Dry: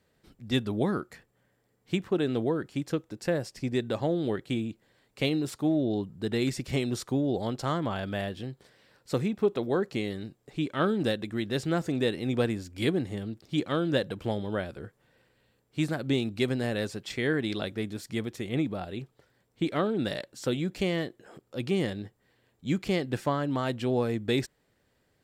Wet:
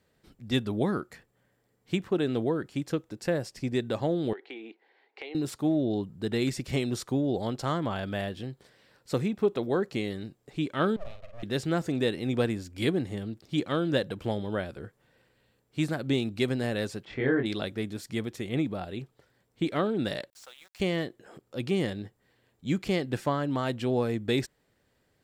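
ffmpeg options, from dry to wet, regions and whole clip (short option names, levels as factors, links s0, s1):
-filter_complex "[0:a]asettb=1/sr,asplit=3[s0][s1][s2];[s0]atrim=end=4.334[s3];[s1]atrim=start=4.33:end=5.35,asetpts=PTS-STARTPTS,afade=t=in:d=0.004:c=qsin,afade=t=out:st=1.016:d=0.004:c=qsin,highpass=f=360:w=0.5412,highpass=f=360:w=1.3066,equalizer=f=400:t=q:w=4:g=5,equalizer=f=570:t=q:w=4:g=-6,equalizer=f=820:t=q:w=4:g=10,equalizer=f=1200:t=q:w=4:g=-5,equalizer=f=2100:t=q:w=4:g=7,equalizer=f=3400:t=q:w=4:g=-3,lowpass=f=4000:w=0.5412,lowpass=f=4000:w=1.3066,acompressor=threshold=0.0126:ratio=5:attack=3.2:release=140:knee=1:detection=peak[s4];[s2]atrim=start=5.346[s5];[s3][s4]acrossfade=d=0.004:c1=hsin:c2=qsin[s6];[s6][s5]acrossfade=d=0.004:c1=qsin:c2=hsin,asettb=1/sr,asplit=3[s7][s8][s9];[s7]atrim=end=10.964[s10];[s8]atrim=start=10.96:end=11.43,asetpts=PTS-STARTPTS,afade=t=in:d=0.004:c=qsin,afade=t=out:st=0.466:d=0.004:c=qsin,asplit=3[s11][s12][s13];[s11]bandpass=f=300:t=q:w=8,volume=1[s14];[s12]bandpass=f=870:t=q:w=8,volume=0.501[s15];[s13]bandpass=f=2240:t=q:w=8,volume=0.355[s16];[s14][s15][s16]amix=inputs=3:normalize=0,aeval=exprs='abs(val(0))':c=same,asplit=2[s17][s18];[s18]adelay=49,volume=0.422[s19];[s17][s19]amix=inputs=2:normalize=0,atrim=end_sample=20727[s20];[s9]atrim=start=11.426[s21];[s10][s20]acrossfade=d=0.004:c1=hsin:c2=qsin[s22];[s22][s21]acrossfade=d=0.004:c1=qsin:c2=hsin,asettb=1/sr,asplit=3[s23][s24][s25];[s23]atrim=end=17.054[s26];[s24]atrim=start=17.05:end=17.46,asetpts=PTS-STARTPTS,afade=t=in:d=0.004:c=qsin,afade=t=out:st=0.406:d=0.004:c=qsin,lowpass=1800,asplit=2[s27][s28];[s28]adelay=23,volume=0.794[s29];[s27][s29]amix=inputs=2:normalize=0,atrim=end_sample=18081[s30];[s25]atrim=start=17.456[s31];[s26][s30]acrossfade=d=0.004:c1=hsin:c2=qsin[s32];[s32][s31]acrossfade=d=0.004:c1=qsin:c2=hsin,asettb=1/sr,asplit=3[s33][s34][s35];[s33]atrim=end=20.304[s36];[s34]atrim=start=20.3:end=20.8,asetpts=PTS-STARTPTS,afade=t=in:d=0.004:c=qsin,afade=t=out:st=0.496:d=0.004:c=qsin,highpass=f=700:w=0.5412,highpass=f=700:w=1.3066,acompressor=threshold=0.002:ratio=2:attack=3.2:release=140:knee=1:detection=peak,aeval=exprs='val(0)*gte(abs(val(0)),0.00237)':c=same[s37];[s35]atrim=start=20.796[s38];[s36][s37]acrossfade=d=0.004:c1=hsin:c2=qsin[s39];[s39][s38]acrossfade=d=0.004:c1=qsin:c2=hsin"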